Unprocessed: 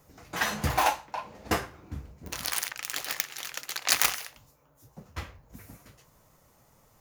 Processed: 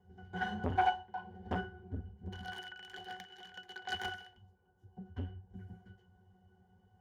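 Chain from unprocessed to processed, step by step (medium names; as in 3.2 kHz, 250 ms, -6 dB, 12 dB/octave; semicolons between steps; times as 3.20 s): pitch-class resonator F#, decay 0.17 s; transformer saturation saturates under 670 Hz; trim +8 dB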